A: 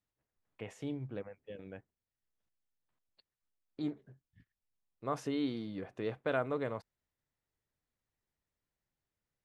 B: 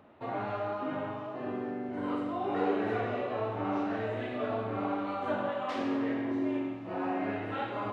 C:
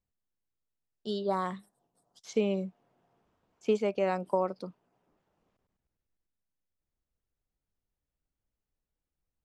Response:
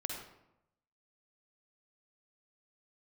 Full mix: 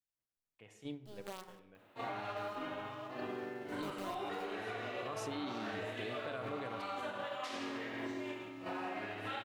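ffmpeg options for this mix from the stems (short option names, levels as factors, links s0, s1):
-filter_complex "[0:a]highshelf=f=2300:g=11,volume=0.841,asplit=3[s0][s1][s2];[s1]volume=0.126[s3];[1:a]crystalizer=i=9.5:c=0,alimiter=level_in=1.06:limit=0.0631:level=0:latency=1:release=235,volume=0.944,adelay=1750,volume=0.596,asplit=2[s4][s5];[s5]volume=0.355[s6];[2:a]equalizer=f=3600:t=o:w=0.94:g=-7.5,acrusher=bits=5:dc=4:mix=0:aa=0.000001,volume=0.141,asplit=2[s7][s8];[s8]volume=0.335[s9];[s2]apad=whole_len=416325[s10];[s7][s10]sidechaingate=range=0.0224:threshold=0.001:ratio=16:detection=peak[s11];[s0][s4]amix=inputs=2:normalize=0,agate=range=0.0891:threshold=0.0126:ratio=16:detection=peak,alimiter=level_in=1.78:limit=0.0631:level=0:latency=1:release=71,volume=0.562,volume=1[s12];[3:a]atrim=start_sample=2205[s13];[s3][s6][s9]amix=inputs=3:normalize=0[s14];[s14][s13]afir=irnorm=-1:irlink=0[s15];[s11][s12][s15]amix=inputs=3:normalize=0,acompressor=threshold=0.00891:ratio=2"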